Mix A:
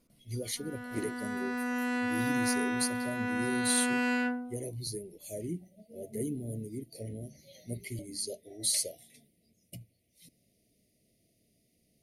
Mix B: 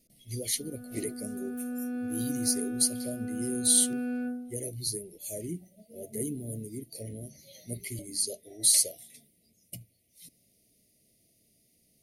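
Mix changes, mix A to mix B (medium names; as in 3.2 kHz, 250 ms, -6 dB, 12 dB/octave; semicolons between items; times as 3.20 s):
background: add boxcar filter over 45 samples; master: add treble shelf 4.6 kHz +9.5 dB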